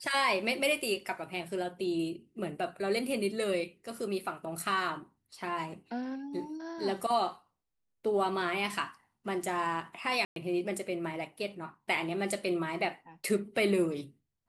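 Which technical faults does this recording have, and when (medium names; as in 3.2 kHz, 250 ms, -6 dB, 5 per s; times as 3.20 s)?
10.25–10.36 s: dropout 112 ms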